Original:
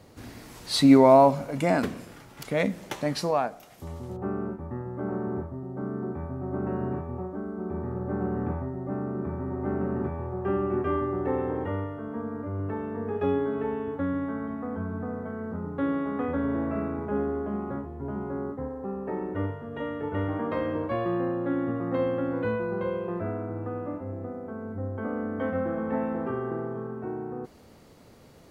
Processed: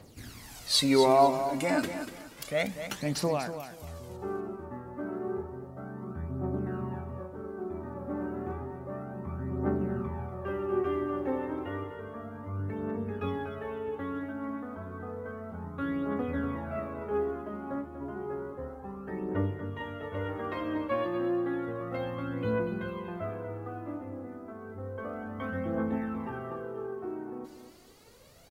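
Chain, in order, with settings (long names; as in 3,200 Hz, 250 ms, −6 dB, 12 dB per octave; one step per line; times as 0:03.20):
high-shelf EQ 2,200 Hz +8.5 dB
phase shifter 0.31 Hz, delay 3.7 ms, feedback 60%
repeating echo 240 ms, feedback 27%, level −10 dB
level −7 dB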